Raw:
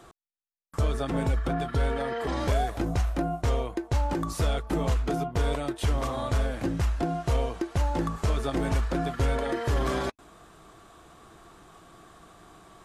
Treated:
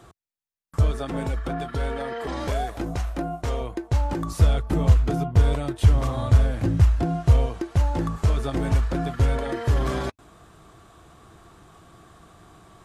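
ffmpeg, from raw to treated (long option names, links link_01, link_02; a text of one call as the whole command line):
ffmpeg -i in.wav -af "asetnsamples=nb_out_samples=441:pad=0,asendcmd='0.91 equalizer g -2.5;3.61 equalizer g 6;4.41 equalizer g 14.5;7.46 equalizer g 8.5',equalizer=frequency=94:width_type=o:width=1.5:gain=9" out.wav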